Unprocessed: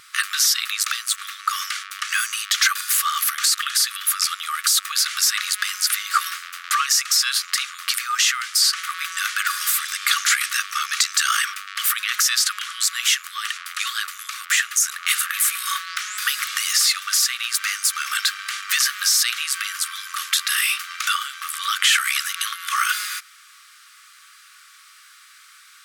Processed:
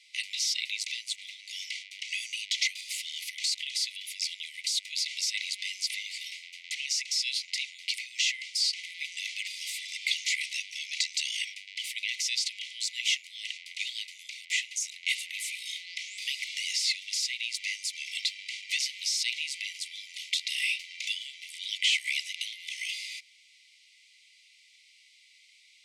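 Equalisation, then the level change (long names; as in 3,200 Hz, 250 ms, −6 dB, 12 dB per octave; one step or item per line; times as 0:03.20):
Chebyshev high-pass filter 2,000 Hz, order 10
high-frequency loss of the air 100 metres
−4.5 dB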